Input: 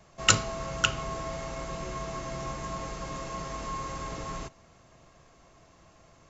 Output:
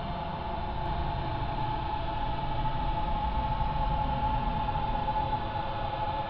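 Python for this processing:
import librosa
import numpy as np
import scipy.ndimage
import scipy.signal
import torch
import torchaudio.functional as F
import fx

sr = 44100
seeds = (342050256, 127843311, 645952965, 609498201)

p1 = scipy.signal.sosfilt(scipy.signal.butter(8, 4800.0, 'lowpass', fs=sr, output='sos'), x)
p2 = fx.fixed_phaser(p1, sr, hz=2600.0, stages=6)
p3 = fx.echo_pitch(p2, sr, ms=96, semitones=-4, count=3, db_per_echo=-3.0)
p4 = fx.paulstretch(p3, sr, seeds[0], factor=40.0, window_s=0.05, from_s=4.7)
p5 = p4 + fx.echo_single(p4, sr, ms=859, db=-4.5, dry=0)
y = F.gain(torch.from_numpy(p5), 6.5).numpy()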